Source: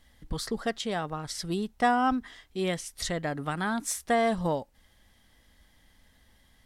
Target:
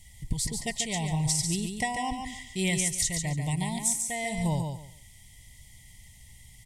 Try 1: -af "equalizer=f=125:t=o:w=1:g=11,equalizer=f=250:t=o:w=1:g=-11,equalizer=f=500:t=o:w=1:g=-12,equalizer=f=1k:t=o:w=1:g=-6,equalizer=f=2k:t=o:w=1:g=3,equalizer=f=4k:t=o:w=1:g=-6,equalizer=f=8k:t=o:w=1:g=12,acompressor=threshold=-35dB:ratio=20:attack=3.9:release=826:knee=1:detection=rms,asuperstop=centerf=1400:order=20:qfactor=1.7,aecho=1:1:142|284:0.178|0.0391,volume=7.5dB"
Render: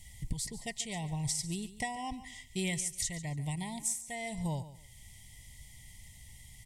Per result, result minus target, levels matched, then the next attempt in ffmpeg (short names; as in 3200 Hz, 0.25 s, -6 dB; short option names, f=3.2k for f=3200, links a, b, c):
compressor: peak gain reduction +6.5 dB; echo-to-direct -9.5 dB
-af "equalizer=f=125:t=o:w=1:g=11,equalizer=f=250:t=o:w=1:g=-11,equalizer=f=500:t=o:w=1:g=-12,equalizer=f=1k:t=o:w=1:g=-6,equalizer=f=2k:t=o:w=1:g=3,equalizer=f=4k:t=o:w=1:g=-6,equalizer=f=8k:t=o:w=1:g=12,acompressor=threshold=-28dB:ratio=20:attack=3.9:release=826:knee=1:detection=rms,asuperstop=centerf=1400:order=20:qfactor=1.7,aecho=1:1:142|284:0.178|0.0391,volume=7.5dB"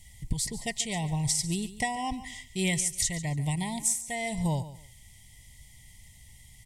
echo-to-direct -9.5 dB
-af "equalizer=f=125:t=o:w=1:g=11,equalizer=f=250:t=o:w=1:g=-11,equalizer=f=500:t=o:w=1:g=-12,equalizer=f=1k:t=o:w=1:g=-6,equalizer=f=2k:t=o:w=1:g=3,equalizer=f=4k:t=o:w=1:g=-6,equalizer=f=8k:t=o:w=1:g=12,acompressor=threshold=-28dB:ratio=20:attack=3.9:release=826:knee=1:detection=rms,asuperstop=centerf=1400:order=20:qfactor=1.7,aecho=1:1:142|284|426:0.531|0.117|0.0257,volume=7.5dB"